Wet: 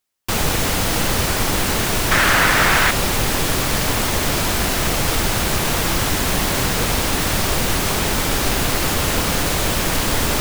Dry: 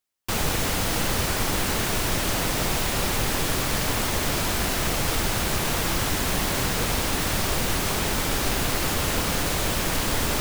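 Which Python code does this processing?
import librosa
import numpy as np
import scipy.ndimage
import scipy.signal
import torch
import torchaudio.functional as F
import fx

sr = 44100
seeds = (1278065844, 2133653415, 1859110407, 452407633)

y = fx.peak_eq(x, sr, hz=1600.0, db=13.5, octaves=1.4, at=(2.11, 2.91))
y = F.gain(torch.from_numpy(y), 5.5).numpy()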